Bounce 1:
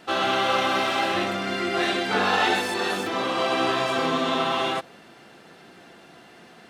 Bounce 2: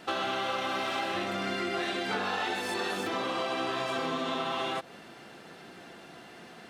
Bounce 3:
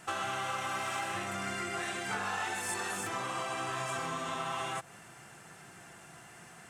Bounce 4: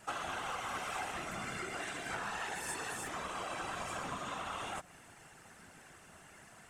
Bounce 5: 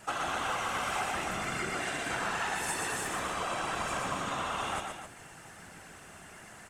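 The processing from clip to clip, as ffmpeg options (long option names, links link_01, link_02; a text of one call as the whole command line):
ffmpeg -i in.wav -af "acompressor=threshold=-29dB:ratio=6" out.wav
ffmpeg -i in.wav -af "equalizer=frequency=125:width_type=o:width=1:gain=6,equalizer=frequency=250:width_type=o:width=1:gain=-10,equalizer=frequency=500:width_type=o:width=1:gain=-8,equalizer=frequency=4000:width_type=o:width=1:gain=-12,equalizer=frequency=8000:width_type=o:width=1:gain=12" out.wav
ffmpeg -i in.wav -af "afftfilt=real='hypot(re,im)*cos(2*PI*random(0))':imag='hypot(re,im)*sin(2*PI*random(1))':win_size=512:overlap=0.75,volume=1.5dB" out.wav
ffmpeg -i in.wav -af "aecho=1:1:122.4|262.4:0.631|0.355,volume=5dB" out.wav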